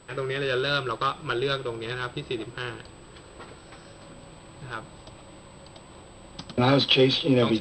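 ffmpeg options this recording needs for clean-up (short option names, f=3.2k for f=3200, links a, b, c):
-af "bandreject=f=8k:w=30"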